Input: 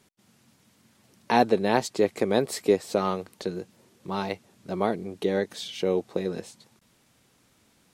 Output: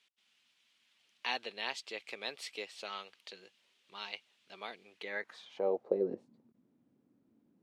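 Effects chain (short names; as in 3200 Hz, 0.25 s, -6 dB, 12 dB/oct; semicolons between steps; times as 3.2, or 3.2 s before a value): speed mistake 24 fps film run at 25 fps; band-pass sweep 3000 Hz -> 260 Hz, 4.87–6.25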